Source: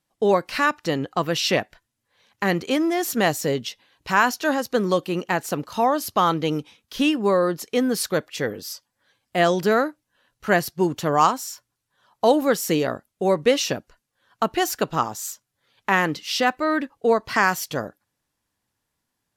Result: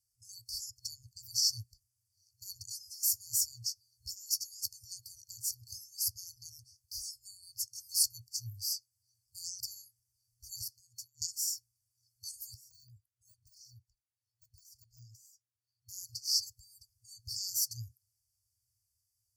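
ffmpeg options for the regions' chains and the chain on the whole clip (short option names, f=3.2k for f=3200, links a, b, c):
-filter_complex "[0:a]asettb=1/sr,asplit=3[a][b][c];[a]atrim=end=2.884[d];[b]atrim=start=2.88:end=4.84,asetpts=PTS-STARTPTS,afade=t=in:d=0.004:c=qsin,afade=t=out:st=1.956:d=0.004:c=qsin,equalizer=f=13k:t=o:w=2.2:g=2.5,acompressor=threshold=-23dB:ratio=5:attack=3.2:release=140:knee=1:detection=peak,asplit=2[e][f];[f]adelay=12,volume=-12dB[g];[e][g]amix=inputs=2:normalize=0,atrim=end_sample=86436[h];[c]atrim=start=4.836[i];[d][h]acrossfade=d=0.004:c1=hsin:c2=qsin[j];[j][i]acrossfade=d=0.004:c1=qsin:c2=hsin,asettb=1/sr,asplit=3[k][l][m];[k]atrim=end=10.614[n];[l]atrim=start=10.61:end=11.22,asetpts=PTS-STARTPTS,afade=t=in:d=0.004:c=qsin,afade=t=out:st=0.606:d=0.004:c=qsin,highpass=180,acompressor=threshold=-38dB:ratio=3:attack=3.2:release=140:knee=1:detection=peak[o];[m]atrim=start=11.216[p];[n][o]acrossfade=d=0.004:c1=hsin:c2=qsin[q];[q][p]acrossfade=d=0.004:c1=qsin:c2=hsin,asettb=1/sr,asplit=3[r][s][t];[r]atrim=end=12.544[u];[s]atrim=start=12.54:end=15.89,asetpts=PTS-STARTPTS,afade=t=in:d=0.004:c=qsin,afade=t=out:st=3.346:d=0.004:c=qsin,deesser=0.85,acrossover=split=200 2100:gain=0.141 1 0.126[v][w][x];[v][w][x]amix=inputs=3:normalize=0,aecho=1:1:2.3:0.63,atrim=end_sample=147735[y];[t]atrim=start=15.886[z];[u][y]acrossfade=d=0.004:c1=hsin:c2=qsin[aa];[aa][z]acrossfade=d=0.004:c1=qsin:c2=hsin,afftfilt=real='re*(1-between(b*sr/4096,120,4400))':imag='im*(1-between(b*sr/4096,120,4400))':win_size=4096:overlap=0.75,highpass=60"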